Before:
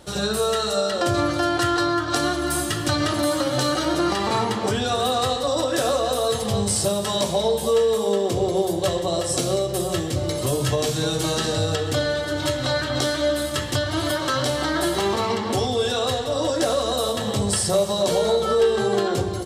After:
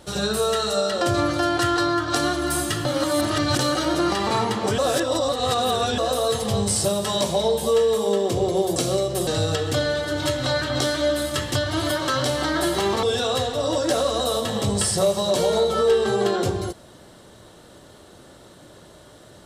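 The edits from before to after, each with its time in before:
2.85–3.59 s: reverse
4.78–5.98 s: reverse
8.76–9.35 s: delete
9.86–11.47 s: delete
15.23–15.75 s: delete

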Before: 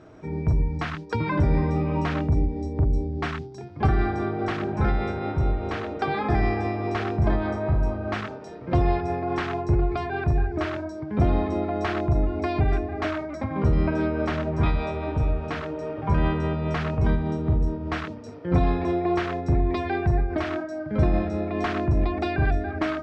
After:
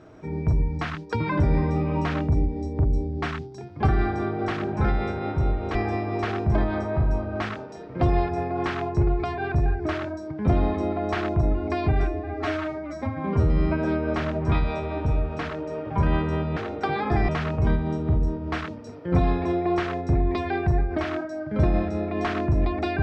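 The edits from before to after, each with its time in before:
5.75–6.47 s: move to 16.68 s
12.75–13.96 s: stretch 1.5×

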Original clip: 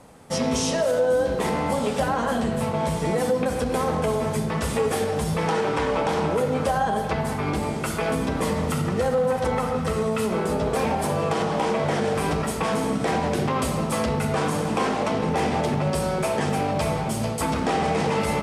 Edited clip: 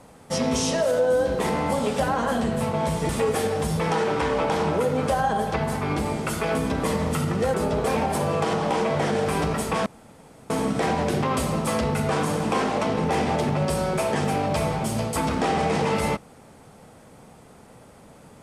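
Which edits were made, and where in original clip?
3.09–4.66 s: delete
9.11–10.43 s: delete
12.75 s: insert room tone 0.64 s

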